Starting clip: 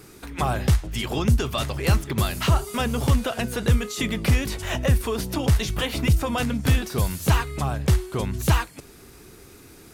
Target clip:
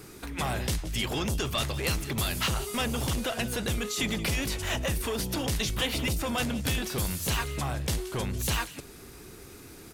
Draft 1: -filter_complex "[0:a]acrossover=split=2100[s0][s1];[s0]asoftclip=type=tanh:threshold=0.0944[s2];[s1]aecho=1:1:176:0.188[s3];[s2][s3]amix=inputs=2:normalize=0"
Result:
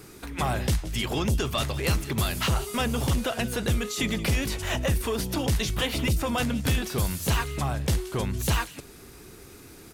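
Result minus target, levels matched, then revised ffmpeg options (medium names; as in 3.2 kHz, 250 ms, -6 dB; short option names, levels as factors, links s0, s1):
saturation: distortion -5 dB
-filter_complex "[0:a]acrossover=split=2100[s0][s1];[s0]asoftclip=type=tanh:threshold=0.0422[s2];[s1]aecho=1:1:176:0.188[s3];[s2][s3]amix=inputs=2:normalize=0"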